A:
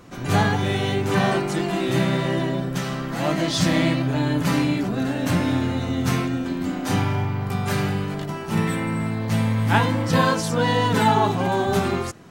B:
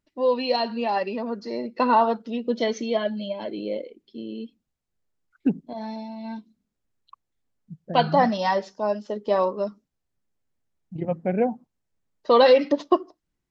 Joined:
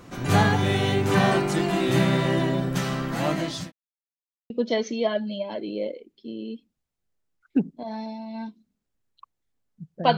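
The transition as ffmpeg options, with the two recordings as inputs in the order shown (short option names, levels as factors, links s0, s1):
-filter_complex "[0:a]apad=whole_dur=10.17,atrim=end=10.17,asplit=2[s0][s1];[s0]atrim=end=3.72,asetpts=PTS-STARTPTS,afade=t=out:st=2.95:d=0.77:c=qsin[s2];[s1]atrim=start=3.72:end=4.5,asetpts=PTS-STARTPTS,volume=0[s3];[1:a]atrim=start=2.4:end=8.07,asetpts=PTS-STARTPTS,afade=t=in:d=0.004:c=hsin[s4];[s2][s3][s4]concat=n=3:v=0:a=1"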